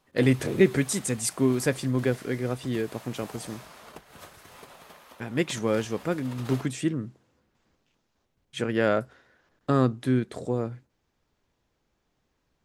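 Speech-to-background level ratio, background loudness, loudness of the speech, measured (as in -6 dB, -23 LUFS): 20.0 dB, -47.0 LUFS, -27.0 LUFS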